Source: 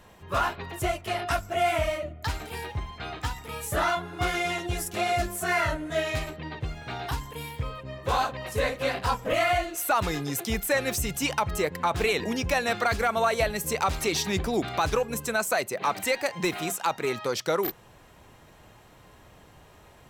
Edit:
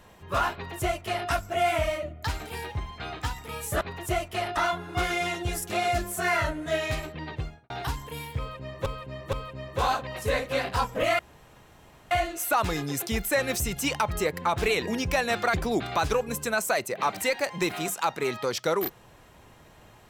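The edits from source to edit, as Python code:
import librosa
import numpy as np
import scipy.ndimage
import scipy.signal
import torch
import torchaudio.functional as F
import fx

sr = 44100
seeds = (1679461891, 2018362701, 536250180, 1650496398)

y = fx.studio_fade_out(x, sr, start_s=6.61, length_s=0.33)
y = fx.edit(y, sr, fx.duplicate(start_s=0.54, length_s=0.76, to_s=3.81),
    fx.repeat(start_s=7.63, length_s=0.47, count=3),
    fx.insert_room_tone(at_s=9.49, length_s=0.92),
    fx.cut(start_s=12.92, length_s=1.44), tone=tone)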